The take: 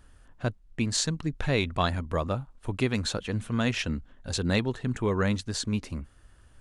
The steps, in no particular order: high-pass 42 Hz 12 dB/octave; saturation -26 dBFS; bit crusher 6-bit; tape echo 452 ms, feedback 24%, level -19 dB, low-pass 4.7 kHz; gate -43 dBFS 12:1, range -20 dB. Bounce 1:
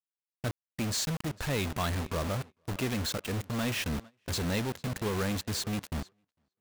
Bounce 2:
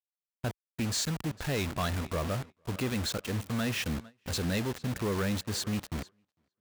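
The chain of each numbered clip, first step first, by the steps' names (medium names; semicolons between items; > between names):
high-pass > saturation > bit crusher > tape echo > gate; bit crusher > tape echo > saturation > high-pass > gate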